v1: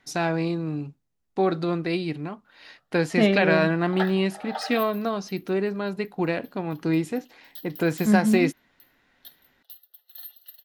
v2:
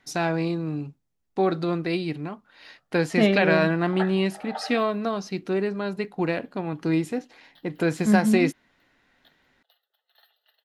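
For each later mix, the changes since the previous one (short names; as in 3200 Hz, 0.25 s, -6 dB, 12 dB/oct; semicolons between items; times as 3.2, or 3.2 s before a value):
background: add air absorption 350 m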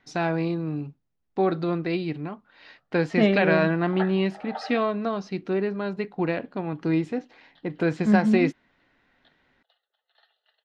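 master: add air absorption 140 m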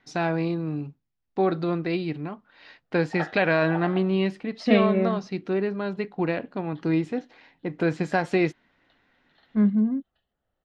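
second voice: entry +1.50 s; background: entry -0.80 s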